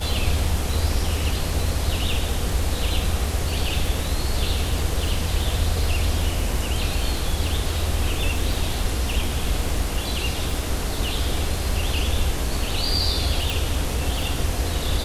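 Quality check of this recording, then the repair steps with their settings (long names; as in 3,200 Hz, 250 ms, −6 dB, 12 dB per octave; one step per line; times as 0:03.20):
surface crackle 35 per second −28 dBFS
0:13.50: click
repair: click removal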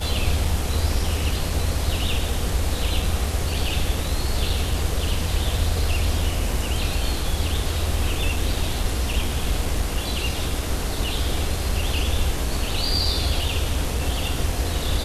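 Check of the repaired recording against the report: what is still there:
none of them is left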